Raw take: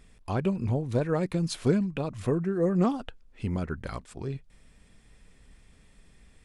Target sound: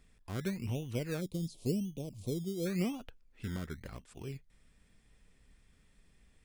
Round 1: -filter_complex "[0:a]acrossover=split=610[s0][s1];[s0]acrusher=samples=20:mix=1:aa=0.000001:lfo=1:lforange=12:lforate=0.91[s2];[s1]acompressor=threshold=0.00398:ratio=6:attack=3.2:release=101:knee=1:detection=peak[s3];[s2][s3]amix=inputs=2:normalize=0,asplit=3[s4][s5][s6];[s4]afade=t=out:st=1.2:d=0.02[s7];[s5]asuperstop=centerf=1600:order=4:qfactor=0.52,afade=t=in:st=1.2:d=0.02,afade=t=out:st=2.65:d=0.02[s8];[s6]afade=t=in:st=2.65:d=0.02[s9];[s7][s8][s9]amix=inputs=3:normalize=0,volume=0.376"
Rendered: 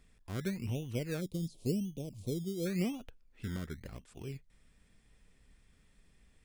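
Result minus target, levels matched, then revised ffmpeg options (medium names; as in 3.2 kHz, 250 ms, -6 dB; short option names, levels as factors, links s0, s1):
compression: peak gain reduction +5.5 dB
-filter_complex "[0:a]acrossover=split=610[s0][s1];[s0]acrusher=samples=20:mix=1:aa=0.000001:lfo=1:lforange=12:lforate=0.91[s2];[s1]acompressor=threshold=0.00841:ratio=6:attack=3.2:release=101:knee=1:detection=peak[s3];[s2][s3]amix=inputs=2:normalize=0,asplit=3[s4][s5][s6];[s4]afade=t=out:st=1.2:d=0.02[s7];[s5]asuperstop=centerf=1600:order=4:qfactor=0.52,afade=t=in:st=1.2:d=0.02,afade=t=out:st=2.65:d=0.02[s8];[s6]afade=t=in:st=2.65:d=0.02[s9];[s7][s8][s9]amix=inputs=3:normalize=0,volume=0.376"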